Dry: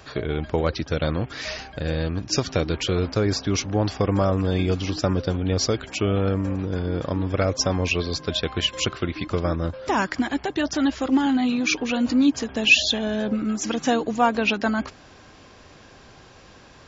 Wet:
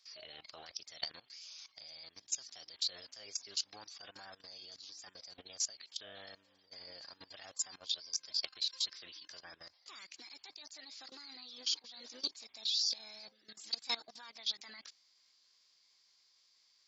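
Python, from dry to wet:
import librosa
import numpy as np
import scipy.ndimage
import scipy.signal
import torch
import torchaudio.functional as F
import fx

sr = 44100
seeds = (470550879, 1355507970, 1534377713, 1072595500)

y = fx.bandpass_q(x, sr, hz=3600.0, q=6.3)
y = fx.level_steps(y, sr, step_db=19)
y = fx.formant_shift(y, sr, semitones=5)
y = F.gain(torch.from_numpy(y), 5.5).numpy()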